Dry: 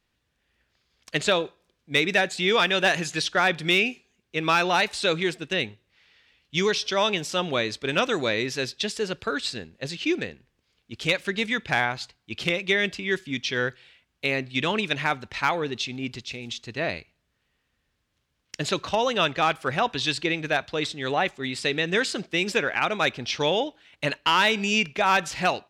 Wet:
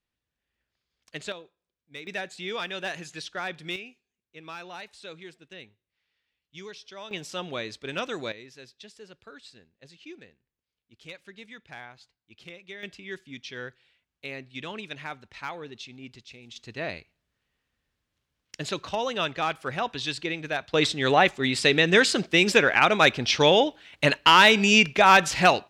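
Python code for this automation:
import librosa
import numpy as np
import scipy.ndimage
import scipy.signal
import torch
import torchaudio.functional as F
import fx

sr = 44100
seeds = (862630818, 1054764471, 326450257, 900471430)

y = fx.gain(x, sr, db=fx.steps((0.0, -12.0), (1.32, -19.5), (2.07, -11.5), (3.76, -19.0), (7.11, -8.0), (8.32, -19.5), (12.83, -12.0), (16.56, -5.0), (20.74, 5.0)))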